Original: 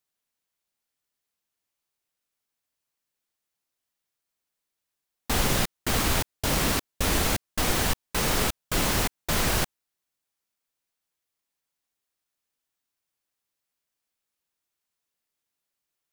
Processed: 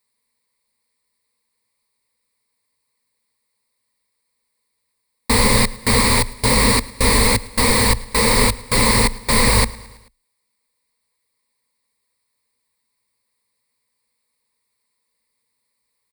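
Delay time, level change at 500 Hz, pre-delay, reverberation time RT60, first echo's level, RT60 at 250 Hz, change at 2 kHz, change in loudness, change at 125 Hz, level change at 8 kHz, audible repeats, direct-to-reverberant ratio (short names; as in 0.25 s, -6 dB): 0.109 s, +10.5 dB, none, none, -22.0 dB, none, +10.0 dB, +10.0 dB, +9.5 dB, +9.5 dB, 3, none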